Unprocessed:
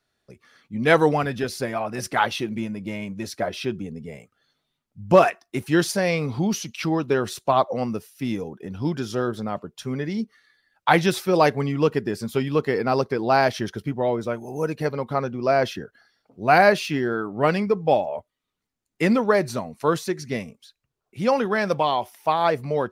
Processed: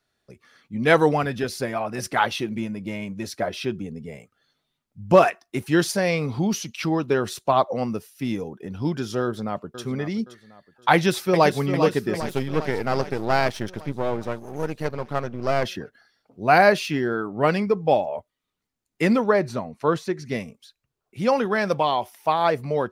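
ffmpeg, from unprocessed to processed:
ffmpeg -i in.wav -filter_complex "[0:a]asplit=2[link_01][link_02];[link_02]afade=type=in:start_time=9.22:duration=0.01,afade=type=out:start_time=9.82:duration=0.01,aecho=0:1:520|1040|1560|2080:0.237137|0.0829981|0.0290493|0.0101673[link_03];[link_01][link_03]amix=inputs=2:normalize=0,asplit=2[link_04][link_05];[link_05]afade=type=in:start_time=10.93:duration=0.01,afade=type=out:start_time=11.54:duration=0.01,aecho=0:1:400|800|1200|1600|2000|2400|2800|3200|3600|4000|4400:0.375837|0.263086|0.18416|0.128912|0.0902386|0.063167|0.0442169|0.0309518|0.0216663|0.0151664|0.0106165[link_06];[link_04][link_06]amix=inputs=2:normalize=0,asettb=1/sr,asplit=3[link_07][link_08][link_09];[link_07]atrim=end=12.204[link_10];[link_08]atrim=start=12.2:end=15.65,asetpts=PTS-STARTPTS,afade=type=in:duration=0.004:curve=qsin,afade=type=out:start_time=3.446:duration=0.004:curve=qsin,aeval=exprs='if(lt(val(0),0),0.251*val(0),val(0))':channel_layout=same[link_11];[link_09]atrim=start=15.646[link_12];[link_10][link_11]acrossfade=duration=0.004:curve1=hsin:curve2=qsin[link_13];[link_13][link_12]acrossfade=duration=0.004:curve1=qsin:curve2=hsin,asettb=1/sr,asplit=3[link_14][link_15][link_16];[link_14]atrim=end=19.304[link_17];[link_15]atrim=start=19.3:end=20.26,asetpts=PTS-STARTPTS,afade=type=in:duration=0.004:curve=qsin,afade=type=out:start_time=0.956:duration=0.004:curve=qsin,lowpass=frequency=3000:poles=1[link_18];[link_16]atrim=start=20.256[link_19];[link_17][link_18]acrossfade=duration=0.004:curve1=hsin:curve2=qsin[link_20];[link_20][link_19]acrossfade=duration=0.004:curve1=qsin:curve2=hsin" out.wav

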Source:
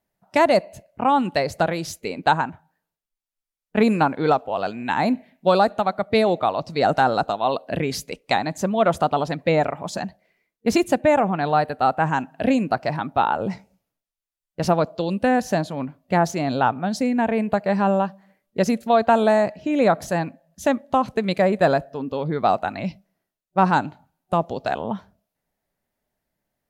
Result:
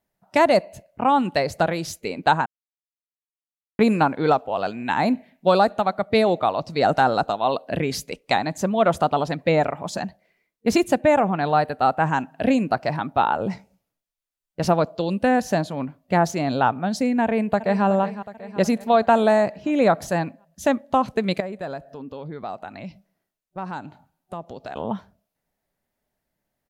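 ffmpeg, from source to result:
ffmpeg -i in.wav -filter_complex "[0:a]asplit=2[link_01][link_02];[link_02]afade=type=in:start_time=17.23:duration=0.01,afade=type=out:start_time=17.85:duration=0.01,aecho=0:1:370|740|1110|1480|1850|2220|2590:0.223872|0.134323|0.080594|0.0483564|0.0290138|0.0174083|0.010445[link_03];[link_01][link_03]amix=inputs=2:normalize=0,asettb=1/sr,asplit=3[link_04][link_05][link_06];[link_04]atrim=end=21.404[link_07];[link_05]atrim=start=21.4:end=24.76,asetpts=PTS-STARTPTS,afade=type=in:duration=0.004:curve=qsin,afade=type=out:start_time=3.356:duration=0.004:curve=qsin,acompressor=threshold=-39dB:ratio=2:attack=3.2:release=140:knee=1:detection=peak[link_08];[link_06]atrim=start=24.756[link_09];[link_07][link_08]acrossfade=duration=0.004:curve1=hsin:curve2=qsin[link_10];[link_10][link_09]acrossfade=duration=0.004:curve1=qsin:curve2=hsin,asplit=3[link_11][link_12][link_13];[link_11]atrim=end=2.46,asetpts=PTS-STARTPTS,afade=type=out:start_time=2.456:duration=0.004:curve=hsin[link_14];[link_12]atrim=start=2.46:end=3.79,asetpts=PTS-STARTPTS,volume=0[link_15];[link_13]atrim=start=3.79,asetpts=PTS-STARTPTS,afade=type=in:duration=0.004:curve=hsin[link_16];[link_14][link_15][link_16]concat=n=3:v=0:a=1" out.wav

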